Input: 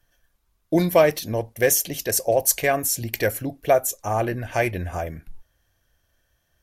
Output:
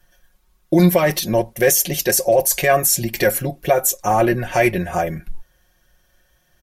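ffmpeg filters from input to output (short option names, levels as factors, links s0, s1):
-af "alimiter=limit=0.188:level=0:latency=1:release=11,aecho=1:1:5.5:0.75,volume=2.11"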